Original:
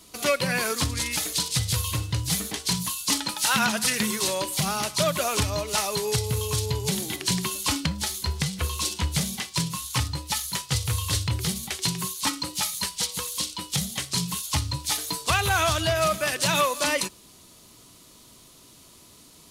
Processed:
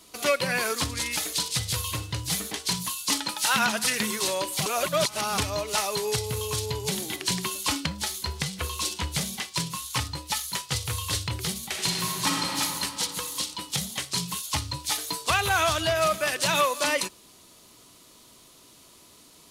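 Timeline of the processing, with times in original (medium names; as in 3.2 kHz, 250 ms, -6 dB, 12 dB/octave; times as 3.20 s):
4.66–5.38 s: reverse
11.65–12.59 s: reverb throw, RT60 3 s, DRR -2 dB
whole clip: tone controls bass -6 dB, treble -2 dB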